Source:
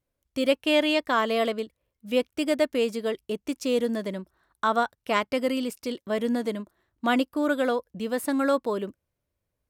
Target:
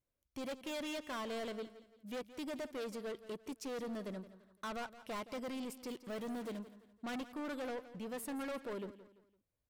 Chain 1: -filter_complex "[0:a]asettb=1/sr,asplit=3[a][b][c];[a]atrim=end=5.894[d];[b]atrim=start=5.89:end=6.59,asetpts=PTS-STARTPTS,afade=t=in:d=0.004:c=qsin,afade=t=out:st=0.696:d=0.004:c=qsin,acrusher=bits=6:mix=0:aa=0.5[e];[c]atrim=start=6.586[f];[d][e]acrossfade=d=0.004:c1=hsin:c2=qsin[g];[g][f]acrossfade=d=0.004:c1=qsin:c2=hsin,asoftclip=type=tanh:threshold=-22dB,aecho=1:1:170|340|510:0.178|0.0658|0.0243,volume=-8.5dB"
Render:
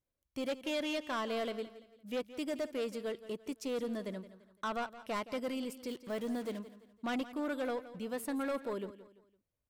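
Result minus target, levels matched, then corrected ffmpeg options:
soft clip: distortion -6 dB
-filter_complex "[0:a]asettb=1/sr,asplit=3[a][b][c];[a]atrim=end=5.894[d];[b]atrim=start=5.89:end=6.59,asetpts=PTS-STARTPTS,afade=t=in:d=0.004:c=qsin,afade=t=out:st=0.696:d=0.004:c=qsin,acrusher=bits=6:mix=0:aa=0.5[e];[c]atrim=start=6.586[f];[d][e]acrossfade=d=0.004:c1=hsin:c2=qsin[g];[g][f]acrossfade=d=0.004:c1=qsin:c2=hsin,asoftclip=type=tanh:threshold=-30.5dB,aecho=1:1:170|340|510:0.178|0.0658|0.0243,volume=-8.5dB"

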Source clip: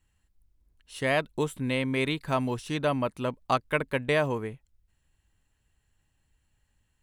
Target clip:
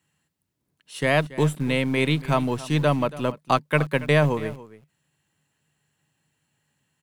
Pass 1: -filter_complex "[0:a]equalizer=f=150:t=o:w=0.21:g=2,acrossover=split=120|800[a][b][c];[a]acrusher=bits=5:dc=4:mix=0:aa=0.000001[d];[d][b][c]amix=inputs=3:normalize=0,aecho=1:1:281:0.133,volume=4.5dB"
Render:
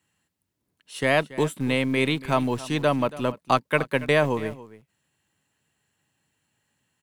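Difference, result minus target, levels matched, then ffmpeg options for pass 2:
125 Hz band -4.5 dB
-filter_complex "[0:a]equalizer=f=150:t=o:w=0.21:g=11,acrossover=split=120|800[a][b][c];[a]acrusher=bits=5:dc=4:mix=0:aa=0.000001[d];[d][b][c]amix=inputs=3:normalize=0,aecho=1:1:281:0.133,volume=4.5dB"

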